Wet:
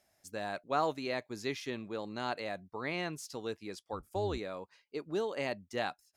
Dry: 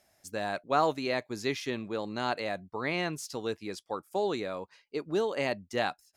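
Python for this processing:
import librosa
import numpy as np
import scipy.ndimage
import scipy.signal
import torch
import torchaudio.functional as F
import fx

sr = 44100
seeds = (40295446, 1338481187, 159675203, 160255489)

y = fx.octave_divider(x, sr, octaves=2, level_db=1.0, at=(3.92, 4.38))
y = y * 10.0 ** (-5.0 / 20.0)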